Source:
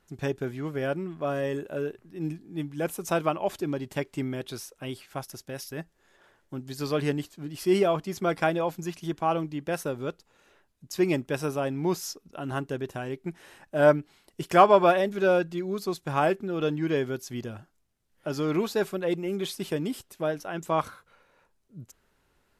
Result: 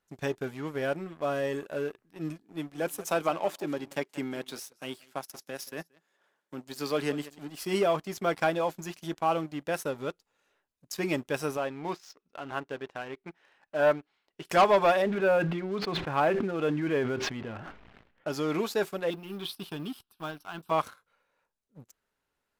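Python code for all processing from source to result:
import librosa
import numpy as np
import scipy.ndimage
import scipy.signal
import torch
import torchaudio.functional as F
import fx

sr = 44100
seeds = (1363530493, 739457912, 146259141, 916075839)

y = fx.chain(x, sr, fx.highpass(hz=150.0, slope=24),
    fx.echo_single(ms=179, db=-17.5), at=(2.43, 7.58))
y = fx.chain(y, sr, fx.lowpass(hz=3400.0, slope=12),
    fx.low_shelf(hz=310.0, db=-8.5), at=(11.57, 14.45))
y = fx.chain(y, sr, fx.lowpass(hz=2800.0, slope=24),
    fx.sustainer(db_per_s=26.0), at=(15.02, 18.28))
y = fx.chain(y, sr, fx.block_float(bits=7),
    fx.fixed_phaser(hz=2000.0, stages=6), at=(19.1, 20.71))
y = fx.notch(y, sr, hz=360.0, q=12.0)
y = fx.leveller(y, sr, passes=2)
y = fx.low_shelf(y, sr, hz=210.0, db=-9.0)
y = y * librosa.db_to_amplitude(-7.0)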